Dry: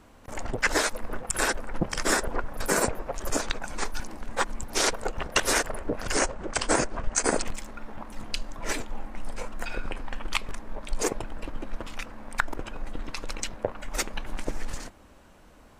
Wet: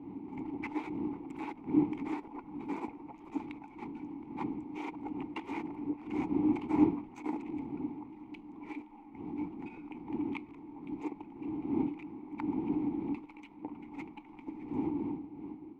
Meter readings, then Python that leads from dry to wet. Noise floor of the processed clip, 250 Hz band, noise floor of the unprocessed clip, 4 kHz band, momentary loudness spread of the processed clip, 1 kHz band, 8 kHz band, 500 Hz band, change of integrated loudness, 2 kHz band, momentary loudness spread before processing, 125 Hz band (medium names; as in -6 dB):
-53 dBFS, +4.0 dB, -53 dBFS, under -25 dB, 16 LU, -11.0 dB, under -40 dB, -11.5 dB, -7.5 dB, -20.5 dB, 14 LU, -7.5 dB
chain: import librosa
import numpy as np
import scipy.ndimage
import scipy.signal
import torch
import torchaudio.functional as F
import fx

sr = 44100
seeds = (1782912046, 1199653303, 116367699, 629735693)

y = scipy.signal.medfilt(x, 9)
y = fx.dmg_wind(y, sr, seeds[0], corner_hz=280.0, level_db=-27.0)
y = fx.vowel_filter(y, sr, vowel='u')